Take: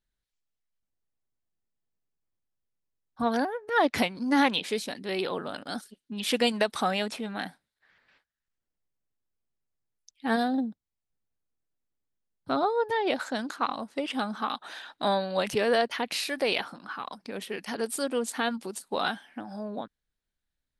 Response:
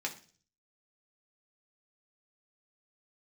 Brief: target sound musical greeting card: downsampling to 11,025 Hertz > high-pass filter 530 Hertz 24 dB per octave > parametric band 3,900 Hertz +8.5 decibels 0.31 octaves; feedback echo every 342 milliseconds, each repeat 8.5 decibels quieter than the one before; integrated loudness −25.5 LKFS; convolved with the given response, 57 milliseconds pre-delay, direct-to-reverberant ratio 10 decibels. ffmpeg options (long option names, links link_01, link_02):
-filter_complex "[0:a]aecho=1:1:342|684|1026|1368:0.376|0.143|0.0543|0.0206,asplit=2[link_01][link_02];[1:a]atrim=start_sample=2205,adelay=57[link_03];[link_02][link_03]afir=irnorm=-1:irlink=0,volume=-13dB[link_04];[link_01][link_04]amix=inputs=2:normalize=0,aresample=11025,aresample=44100,highpass=frequency=530:width=0.5412,highpass=frequency=530:width=1.3066,equalizer=frequency=3900:width_type=o:width=0.31:gain=8.5,volume=3.5dB"